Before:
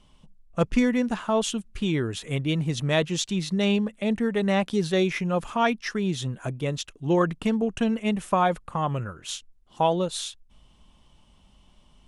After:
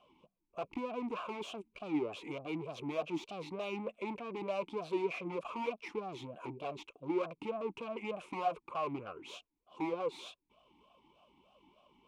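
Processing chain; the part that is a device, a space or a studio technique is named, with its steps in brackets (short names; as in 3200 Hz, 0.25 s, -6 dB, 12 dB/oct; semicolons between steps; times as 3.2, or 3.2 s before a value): talk box (tube stage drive 36 dB, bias 0.55; vowel sweep a-u 3.3 Hz); gain +12 dB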